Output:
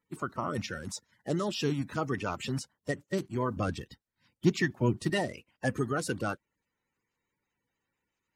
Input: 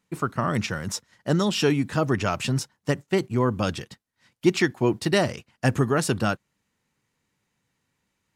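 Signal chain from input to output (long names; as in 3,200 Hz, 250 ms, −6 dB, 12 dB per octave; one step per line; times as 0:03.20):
spectral magnitudes quantised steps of 30 dB
0:03.56–0:05.10: low-shelf EQ 190 Hz +9.5 dB
level −8 dB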